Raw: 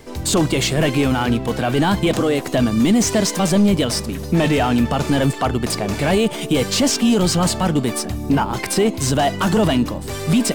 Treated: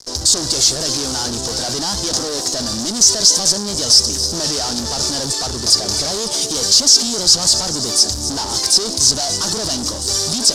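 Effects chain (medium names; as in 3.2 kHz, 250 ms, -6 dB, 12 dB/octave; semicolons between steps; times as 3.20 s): peaking EQ 170 Hz -10 dB 1.3 oct; feedback echo behind a high-pass 268 ms, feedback 80%, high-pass 5.3 kHz, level -16.5 dB; fuzz box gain 30 dB, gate -40 dBFS; low-pass 7.5 kHz 12 dB/octave; resonant high shelf 3.6 kHz +13 dB, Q 3; band-stop 2.1 kHz, Q 29; trim -10 dB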